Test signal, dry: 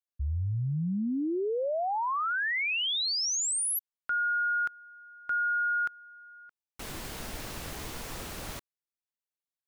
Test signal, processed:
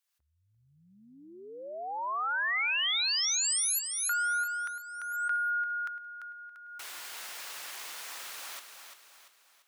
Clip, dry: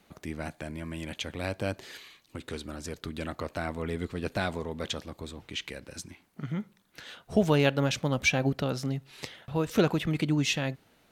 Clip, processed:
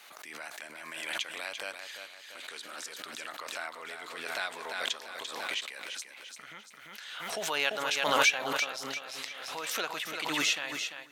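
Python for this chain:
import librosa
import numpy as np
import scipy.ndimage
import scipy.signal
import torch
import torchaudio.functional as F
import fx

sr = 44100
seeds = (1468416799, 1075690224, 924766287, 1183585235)

y = scipy.signal.sosfilt(scipy.signal.butter(2, 1100.0, 'highpass', fs=sr, output='sos'), x)
y = fx.echo_feedback(y, sr, ms=343, feedback_pct=44, wet_db=-7.5)
y = fx.pre_swell(y, sr, db_per_s=34.0)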